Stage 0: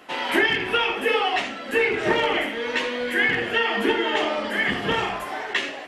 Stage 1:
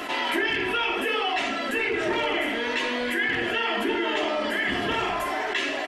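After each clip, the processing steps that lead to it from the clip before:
comb filter 3 ms, depth 43%
hum removal 51.13 Hz, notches 32
envelope flattener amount 70%
level −8 dB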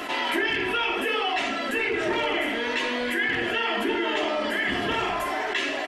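no processing that can be heard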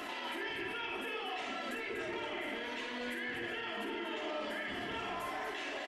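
brickwall limiter −25.5 dBFS, peak gain reduction 11.5 dB
on a send: loudspeakers that aren't time-aligned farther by 18 metres −7 dB, 83 metres −7 dB
on the sum: level −7.5 dB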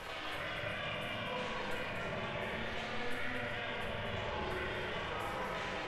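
soft clipping −30.5 dBFS, distortion −23 dB
ring modulation 240 Hz
rectangular room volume 170 cubic metres, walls hard, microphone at 0.55 metres

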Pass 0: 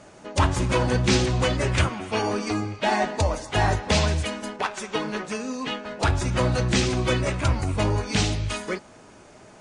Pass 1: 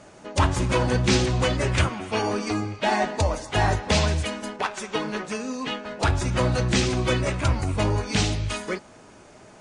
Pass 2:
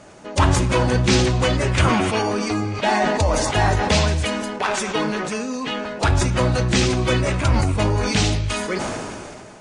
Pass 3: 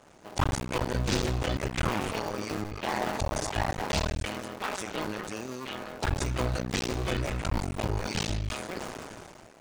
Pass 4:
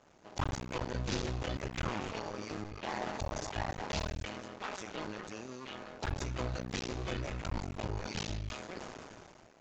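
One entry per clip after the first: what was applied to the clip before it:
no processing that can be heard
level that may fall only so fast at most 25 dB per second; level +3 dB
sub-harmonics by changed cycles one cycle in 2, muted; level −8.5 dB
downsampling to 16,000 Hz; level −7.5 dB

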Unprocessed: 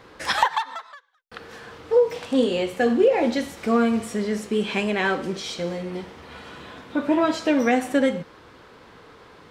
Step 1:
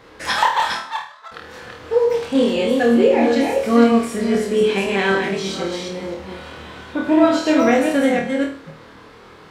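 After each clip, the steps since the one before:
delay that plays each chunk backwards 256 ms, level −3.5 dB
flutter between parallel walls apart 4.4 metres, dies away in 0.42 s
level +1 dB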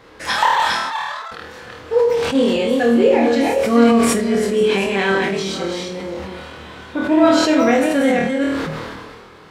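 level that may fall only so fast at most 30 dB per second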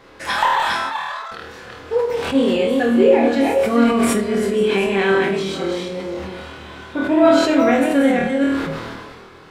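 dynamic equaliser 5,600 Hz, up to −6 dB, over −40 dBFS, Q 1.4
convolution reverb RT60 0.55 s, pre-delay 3 ms, DRR 8.5 dB
level −1 dB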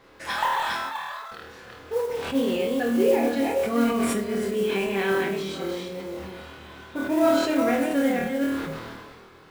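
noise that follows the level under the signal 23 dB
level −7.5 dB

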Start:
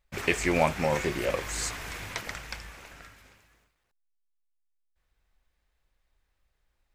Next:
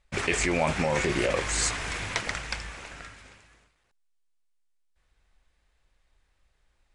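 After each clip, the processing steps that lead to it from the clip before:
Chebyshev low-pass filter 10,000 Hz, order 6
in parallel at +2 dB: compressor whose output falls as the input rises −30 dBFS, ratio −0.5
on the sum: level −2.5 dB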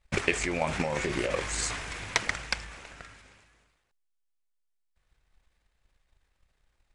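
transient designer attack +11 dB, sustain +7 dB
level −6.5 dB

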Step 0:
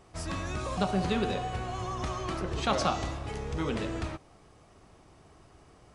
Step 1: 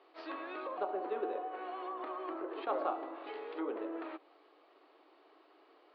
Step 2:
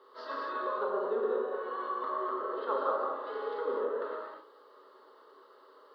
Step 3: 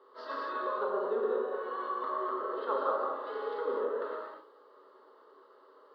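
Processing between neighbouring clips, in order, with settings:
Chebyshev band-pass filter 300–4,400 Hz, order 5; treble cut that deepens with the level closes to 1,100 Hz, closed at −32 dBFS; level that may rise only so fast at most 310 dB per second; level −3.5 dB
in parallel at −3 dB: speech leveller 0.5 s; on the sum: phaser with its sweep stopped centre 480 Hz, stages 8; reverb whose tail is shaped and stops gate 280 ms flat, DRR −2.5 dB
one half of a high-frequency compander decoder only

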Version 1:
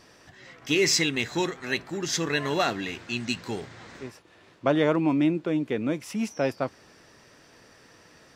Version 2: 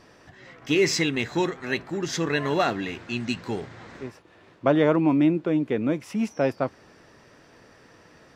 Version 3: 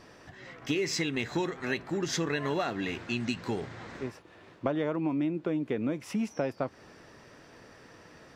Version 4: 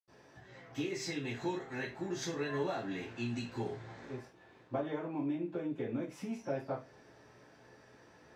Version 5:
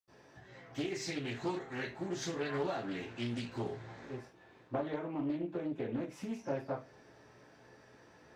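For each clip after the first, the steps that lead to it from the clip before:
high-shelf EQ 3,000 Hz −9 dB; level +3 dB
downward compressor 6 to 1, threshold −27 dBFS, peak gain reduction 12 dB
convolution reverb RT60 0.30 s, pre-delay 76 ms
highs frequency-modulated by the lows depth 0.37 ms

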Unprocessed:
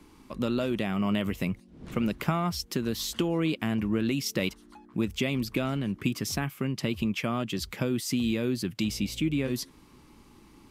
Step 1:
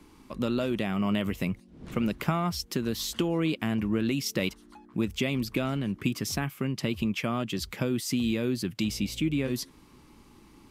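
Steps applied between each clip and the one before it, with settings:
no processing that can be heard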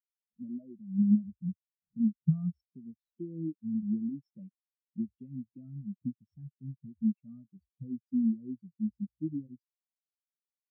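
bass and treble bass +5 dB, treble +3 dB
every bin expanded away from the loudest bin 4 to 1
level −6 dB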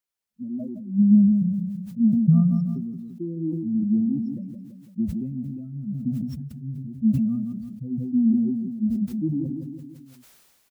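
repeating echo 166 ms, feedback 39%, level −11 dB
level that may fall only so fast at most 32 dB per second
level +7.5 dB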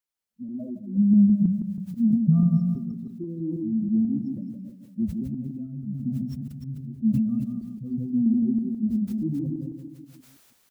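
delay that plays each chunk backwards 162 ms, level −6 dB
level −2.5 dB

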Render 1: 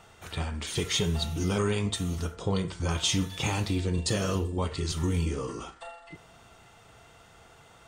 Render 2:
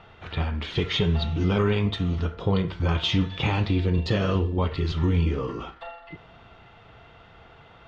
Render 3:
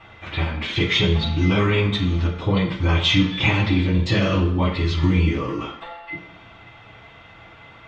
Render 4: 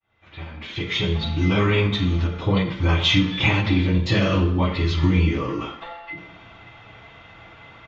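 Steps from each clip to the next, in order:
low-pass filter 3,700 Hz 24 dB per octave; low-shelf EQ 130 Hz +3 dB; level +4 dB
convolution reverb RT60 0.80 s, pre-delay 3 ms, DRR −5.5 dB
fade in at the beginning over 1.69 s; downsampling to 16,000 Hz; every ending faded ahead of time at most 110 dB per second

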